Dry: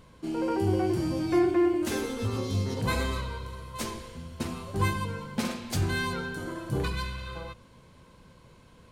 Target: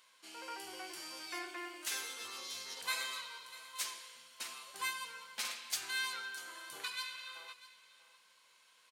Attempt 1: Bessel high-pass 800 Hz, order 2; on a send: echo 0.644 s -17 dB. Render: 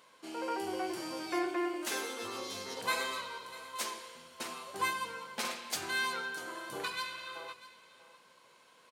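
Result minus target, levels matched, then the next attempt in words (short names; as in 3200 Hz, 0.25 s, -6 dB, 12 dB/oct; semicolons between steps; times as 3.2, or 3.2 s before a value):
1000 Hz band +5.0 dB
Bessel high-pass 2200 Hz, order 2; on a send: echo 0.644 s -17 dB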